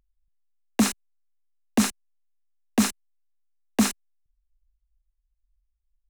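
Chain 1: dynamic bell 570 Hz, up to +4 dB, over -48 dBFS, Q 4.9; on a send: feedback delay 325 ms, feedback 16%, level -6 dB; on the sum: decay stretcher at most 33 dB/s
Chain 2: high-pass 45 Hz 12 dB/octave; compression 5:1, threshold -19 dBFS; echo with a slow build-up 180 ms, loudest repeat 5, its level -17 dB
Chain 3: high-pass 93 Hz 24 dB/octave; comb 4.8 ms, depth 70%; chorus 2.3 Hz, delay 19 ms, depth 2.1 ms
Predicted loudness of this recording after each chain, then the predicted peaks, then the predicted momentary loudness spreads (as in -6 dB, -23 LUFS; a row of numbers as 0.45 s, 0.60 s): -23.0 LUFS, -32.5 LUFS, -25.0 LUFS; -6.5 dBFS, -10.5 dBFS, -7.5 dBFS; 16 LU, 15 LU, 15 LU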